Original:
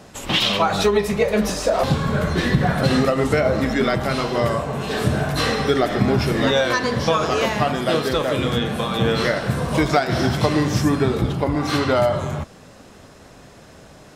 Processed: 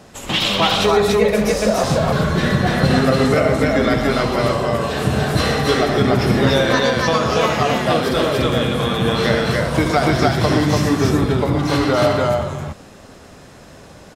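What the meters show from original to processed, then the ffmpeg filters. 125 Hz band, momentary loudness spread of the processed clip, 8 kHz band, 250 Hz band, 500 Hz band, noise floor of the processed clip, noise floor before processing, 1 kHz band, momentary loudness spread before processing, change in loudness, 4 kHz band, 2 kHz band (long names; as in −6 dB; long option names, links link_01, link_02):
+3.0 dB, 4 LU, +3.0 dB, +3.0 dB, +3.0 dB, −42 dBFS, −45 dBFS, +3.0 dB, 4 LU, +3.0 dB, +3.0 dB, +3.0 dB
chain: -af "aecho=1:1:75.8|122.4|288.6:0.355|0.355|0.891"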